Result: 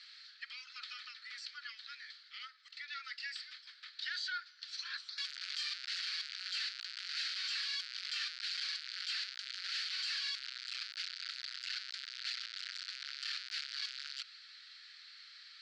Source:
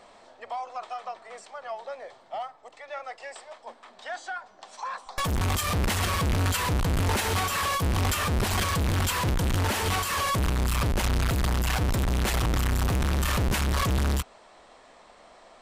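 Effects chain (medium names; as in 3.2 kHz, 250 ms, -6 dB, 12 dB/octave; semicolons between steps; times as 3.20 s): in parallel at -7 dB: sine folder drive 8 dB, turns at -20.5 dBFS; on the sum: four-pole ladder low-pass 4.8 kHz, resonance 75%; peak limiter -30.5 dBFS, peak gain reduction 10.5 dB; steep high-pass 1.4 kHz 72 dB/octave; trim +2 dB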